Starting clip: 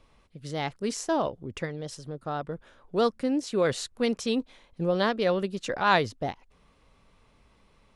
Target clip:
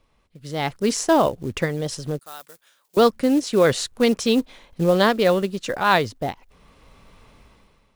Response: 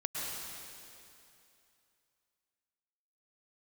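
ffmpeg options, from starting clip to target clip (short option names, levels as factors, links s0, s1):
-filter_complex "[0:a]dynaudnorm=f=130:g=9:m=5.31,acrusher=bits=6:mode=log:mix=0:aa=0.000001,asettb=1/sr,asplit=3[s0][s1][s2];[s0]atrim=end=2.194[s3];[s1]atrim=start=2.19:end=2.97,asetpts=PTS-STARTPTS,afade=t=in:d=0.004:c=qsin,afade=t=out:st=0.776:d=0.004:c=qsin,aderivative[s4];[s2]atrim=start=2.966[s5];[s3][s4]acrossfade=d=0.004:c1=hsin:c2=qsin[s6];[s6][s5]acrossfade=d=0.004:c1=qsin:c2=hsin,volume=0.668"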